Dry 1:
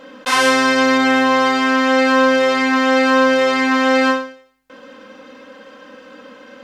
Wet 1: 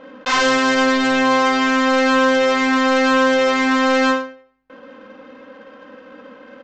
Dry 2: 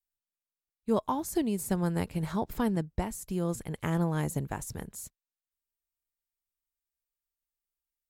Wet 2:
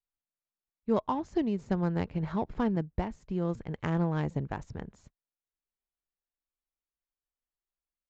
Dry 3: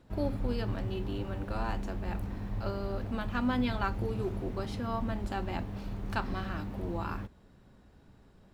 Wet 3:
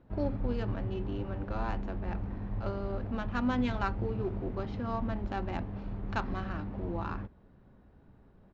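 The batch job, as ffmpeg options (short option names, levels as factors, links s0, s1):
-af "adynamicsmooth=sensitivity=4.5:basefreq=2200,aresample=16000,asoftclip=type=hard:threshold=0.266,aresample=44100"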